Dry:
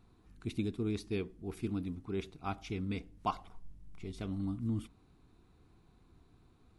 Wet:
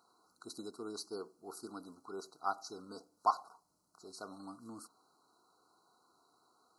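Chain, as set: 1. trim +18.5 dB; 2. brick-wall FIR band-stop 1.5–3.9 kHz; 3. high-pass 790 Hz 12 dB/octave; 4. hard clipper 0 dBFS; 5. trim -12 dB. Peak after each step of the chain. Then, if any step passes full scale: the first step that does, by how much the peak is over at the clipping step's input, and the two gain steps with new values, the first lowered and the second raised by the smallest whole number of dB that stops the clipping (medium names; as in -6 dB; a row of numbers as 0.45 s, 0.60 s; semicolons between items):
-3.0 dBFS, -2.0 dBFS, -4.0 dBFS, -4.0 dBFS, -16.0 dBFS; nothing clips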